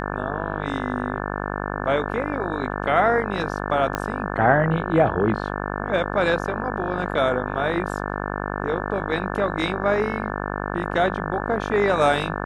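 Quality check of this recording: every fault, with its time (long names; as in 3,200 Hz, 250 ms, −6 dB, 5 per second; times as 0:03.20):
mains buzz 50 Hz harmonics 35 −28 dBFS
0:03.95: click −9 dBFS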